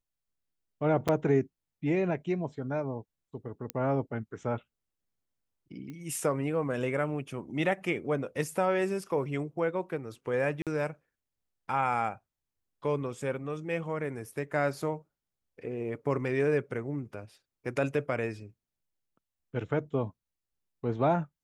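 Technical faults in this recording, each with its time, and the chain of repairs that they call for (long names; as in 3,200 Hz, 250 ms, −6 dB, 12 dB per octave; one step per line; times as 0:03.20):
0:01.08–0:01.09: drop-out 6.5 ms
0:03.70: click −16 dBFS
0:05.90: click −30 dBFS
0:10.62–0:10.67: drop-out 47 ms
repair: click removal
repair the gap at 0:01.08, 6.5 ms
repair the gap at 0:10.62, 47 ms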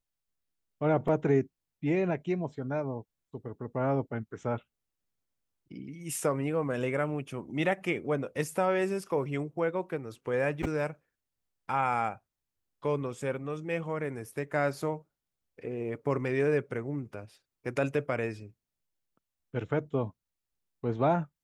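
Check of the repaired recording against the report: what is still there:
none of them is left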